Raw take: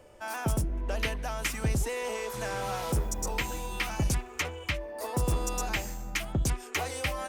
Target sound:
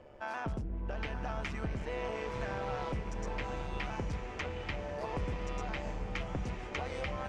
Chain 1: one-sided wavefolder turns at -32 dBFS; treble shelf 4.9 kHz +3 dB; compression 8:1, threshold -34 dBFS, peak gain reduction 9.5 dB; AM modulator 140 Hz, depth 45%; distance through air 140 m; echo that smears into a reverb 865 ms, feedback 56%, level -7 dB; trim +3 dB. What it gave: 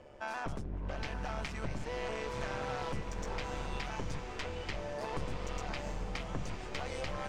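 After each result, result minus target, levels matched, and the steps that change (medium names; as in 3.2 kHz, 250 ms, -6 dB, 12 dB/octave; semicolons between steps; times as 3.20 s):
one-sided wavefolder: distortion +16 dB; 8 kHz band +6.0 dB
change: one-sided wavefolder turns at -24 dBFS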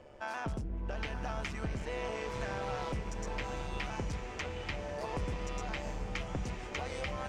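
8 kHz band +5.5 dB
change: treble shelf 4.9 kHz -7.5 dB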